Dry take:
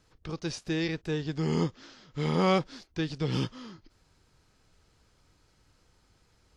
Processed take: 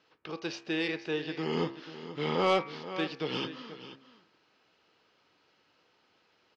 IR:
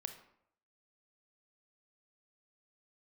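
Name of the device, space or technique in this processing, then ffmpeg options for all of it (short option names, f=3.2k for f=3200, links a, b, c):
intercom: -filter_complex "[0:a]lowpass=f=6.2k:w=0.5412,lowpass=f=6.2k:w=1.3066,asettb=1/sr,asplit=3[a][b][c];[a]atrim=end=1.544[d];[b]atrim=start=1.54:end=2.35,asetpts=PTS-STARTPTS,afade=t=in:d=0.004:c=qsin,afade=t=out:st=0.806:d=0.004:c=qsin,lowshelf=f=120:g=8.5[e];[c]atrim=start=2.346[f];[d][e]acrossfade=d=0.004:c1=hsin:c2=qsin[g];[g][f]acrossfade=d=0.004:c1=qsin:c2=hsin,highpass=330,lowpass=4.2k,equalizer=f=2.8k:t=o:w=0.3:g=6,aecho=1:1:482:0.211,bandreject=f=67.35:t=h:w=4,bandreject=f=134.7:t=h:w=4,bandreject=f=202.05:t=h:w=4,bandreject=f=269.4:t=h:w=4,bandreject=f=336.75:t=h:w=4,bandreject=f=404.1:t=h:w=4,bandreject=f=471.45:t=h:w=4,bandreject=f=538.8:t=h:w=4,bandreject=f=606.15:t=h:w=4,bandreject=f=673.5:t=h:w=4,bandreject=f=740.85:t=h:w=4,bandreject=f=808.2:t=h:w=4,bandreject=f=875.55:t=h:w=4,bandreject=f=942.9:t=h:w=4,bandreject=f=1.01025k:t=h:w=4,bandreject=f=1.0776k:t=h:w=4,bandreject=f=1.14495k:t=h:w=4,bandreject=f=1.2123k:t=h:w=4,bandreject=f=1.27965k:t=h:w=4,bandreject=f=1.347k:t=h:w=4,bandreject=f=1.41435k:t=h:w=4,bandreject=f=1.4817k:t=h:w=4,bandreject=f=1.54905k:t=h:w=4,bandreject=f=1.6164k:t=h:w=4,bandreject=f=1.68375k:t=h:w=4,bandreject=f=1.7511k:t=h:w=4,bandreject=f=1.81845k:t=h:w=4,bandreject=f=1.8858k:t=h:w=4,bandreject=f=1.95315k:t=h:w=4,bandreject=f=2.0205k:t=h:w=4,bandreject=f=2.08785k:t=h:w=4,bandreject=f=2.1552k:t=h:w=4,bandreject=f=2.22255k:t=h:w=4,bandreject=f=2.2899k:t=h:w=4,bandreject=f=2.35725k:t=h:w=4,bandreject=f=2.4246k:t=h:w=4,bandreject=f=2.49195k:t=h:w=4,bandreject=f=2.5593k:t=h:w=4,asoftclip=type=tanh:threshold=-18dB,volume=2dB"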